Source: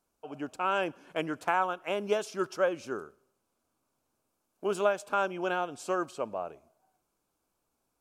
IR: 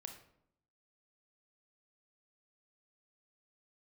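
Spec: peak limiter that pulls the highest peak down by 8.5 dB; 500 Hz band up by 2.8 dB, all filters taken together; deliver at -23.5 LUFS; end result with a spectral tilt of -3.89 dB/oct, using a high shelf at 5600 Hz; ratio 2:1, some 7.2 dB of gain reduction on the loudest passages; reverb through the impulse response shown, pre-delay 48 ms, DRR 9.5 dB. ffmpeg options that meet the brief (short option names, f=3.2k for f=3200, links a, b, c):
-filter_complex "[0:a]equalizer=f=500:t=o:g=3.5,highshelf=f=5.6k:g=6,acompressor=threshold=-32dB:ratio=2,alimiter=limit=-24dB:level=0:latency=1,asplit=2[a][b];[1:a]atrim=start_sample=2205,adelay=48[c];[b][c]afir=irnorm=-1:irlink=0,volume=-5dB[d];[a][d]amix=inputs=2:normalize=0,volume=13dB"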